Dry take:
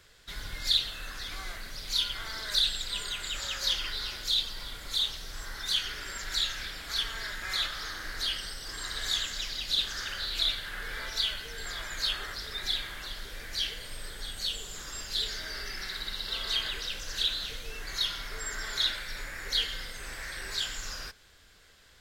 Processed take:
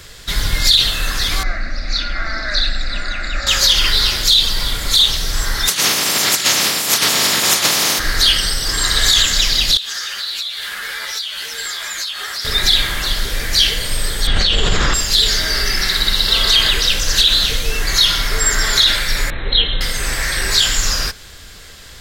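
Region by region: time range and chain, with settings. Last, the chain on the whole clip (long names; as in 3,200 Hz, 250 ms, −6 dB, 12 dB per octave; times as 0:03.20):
0:01.43–0:03.47: low-pass filter 4,200 Hz 24 dB per octave + phaser with its sweep stopped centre 640 Hz, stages 8
0:05.67–0:07.98: ceiling on every frequency bin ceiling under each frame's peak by 23 dB + high-pass filter 170 Hz + compressor whose output falls as the input rises −33 dBFS, ratio −0.5
0:09.77–0:12.45: high-pass filter 1,100 Hz 6 dB per octave + downward compressor 16 to 1, threshold −37 dBFS + string-ensemble chorus
0:14.27–0:14.94: low-pass filter 2,900 Hz + envelope flattener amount 100%
0:19.30–0:19.81: linear-phase brick-wall low-pass 4,200 Hz + parametric band 1,800 Hz −10.5 dB 1.4 octaves
whole clip: bass and treble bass +4 dB, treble +4 dB; notch filter 1,500 Hz, Q 23; boost into a limiter +19.5 dB; level −1 dB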